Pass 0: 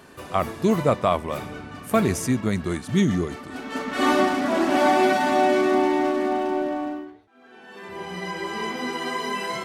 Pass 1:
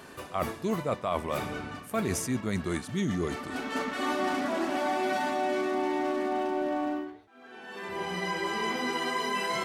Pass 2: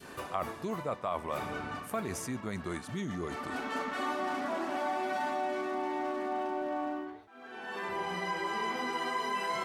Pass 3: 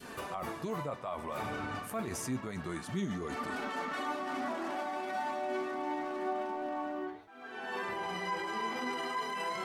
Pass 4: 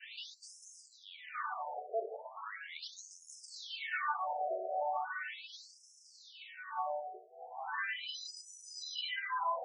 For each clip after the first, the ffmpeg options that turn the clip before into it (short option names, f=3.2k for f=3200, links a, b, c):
-af "lowshelf=f=340:g=-3.5,areverse,acompressor=threshold=-28dB:ratio=6,areverse,volume=1.5dB"
-af "acompressor=threshold=-38dB:ratio=2.5,adynamicequalizer=threshold=0.00282:dfrequency=1000:dqfactor=0.77:tfrequency=1000:tqfactor=0.77:attack=5:release=100:ratio=0.375:range=3:mode=boostabove:tftype=bell"
-af "alimiter=level_in=6dB:limit=-24dB:level=0:latency=1:release=15,volume=-6dB,flanger=delay=4:depth=6:regen=58:speed=0.3:shape=triangular,volume=5.5dB"
-filter_complex "[0:a]acrossover=split=120|1900|5000[a][b][c][d];[c]crystalizer=i=3:c=0[e];[a][b][e][d]amix=inputs=4:normalize=0,afftfilt=real='re*between(b*sr/1024,530*pow(7400/530,0.5+0.5*sin(2*PI*0.38*pts/sr))/1.41,530*pow(7400/530,0.5+0.5*sin(2*PI*0.38*pts/sr))*1.41)':imag='im*between(b*sr/1024,530*pow(7400/530,0.5+0.5*sin(2*PI*0.38*pts/sr))/1.41,530*pow(7400/530,0.5+0.5*sin(2*PI*0.38*pts/sr))*1.41)':win_size=1024:overlap=0.75,volume=4dB"